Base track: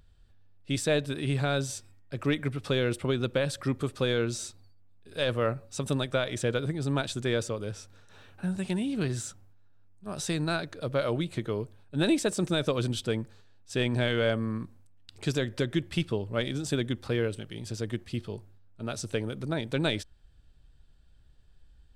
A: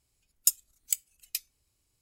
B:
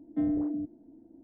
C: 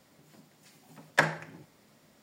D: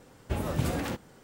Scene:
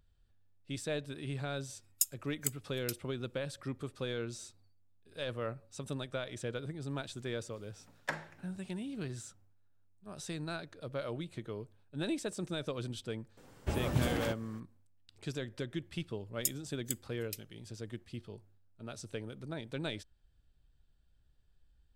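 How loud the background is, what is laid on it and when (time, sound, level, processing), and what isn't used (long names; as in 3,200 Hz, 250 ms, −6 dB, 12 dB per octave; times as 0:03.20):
base track −10.5 dB
0:01.54: mix in A −7 dB
0:06.90: mix in C −13 dB
0:13.37: mix in D −3.5 dB
0:15.98: mix in A −10 dB
not used: B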